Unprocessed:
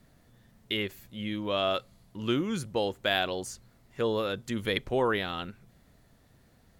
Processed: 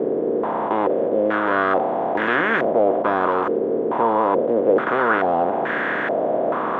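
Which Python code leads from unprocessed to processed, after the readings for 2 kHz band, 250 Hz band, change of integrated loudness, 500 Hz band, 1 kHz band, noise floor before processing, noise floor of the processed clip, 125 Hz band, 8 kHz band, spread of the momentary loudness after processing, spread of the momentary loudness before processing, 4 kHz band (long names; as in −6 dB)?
+13.0 dB, +10.0 dB, +11.0 dB, +13.5 dB, +17.0 dB, −62 dBFS, −24 dBFS, +1.0 dB, below −15 dB, 4 LU, 11 LU, −6.5 dB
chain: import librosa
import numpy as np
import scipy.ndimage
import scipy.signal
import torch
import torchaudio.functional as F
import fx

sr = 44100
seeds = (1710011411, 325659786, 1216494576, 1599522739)

y = fx.bin_compress(x, sr, power=0.2)
y = fx.tube_stage(y, sr, drive_db=16.0, bias=0.35)
y = scipy.signal.sosfilt(scipy.signal.butter(2, 210.0, 'highpass', fs=sr, output='sos'), y)
y = fx.doubler(y, sr, ms=13.0, db=-11.5)
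y = fx.filter_held_lowpass(y, sr, hz=2.3, low_hz=440.0, high_hz=1700.0)
y = F.gain(torch.from_numpy(y), 1.5).numpy()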